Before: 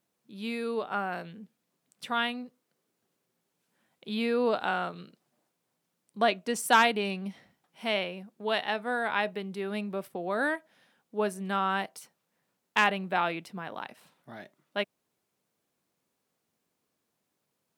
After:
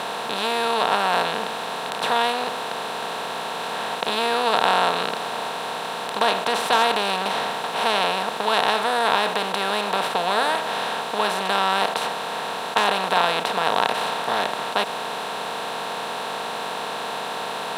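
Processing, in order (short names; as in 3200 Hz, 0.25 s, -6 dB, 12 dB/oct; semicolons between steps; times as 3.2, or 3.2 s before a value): per-bin compression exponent 0.2; graphic EQ 125/250/500/1000/2000/4000 Hz +10/-4/+4/+6/-3/+12 dB; gain -7 dB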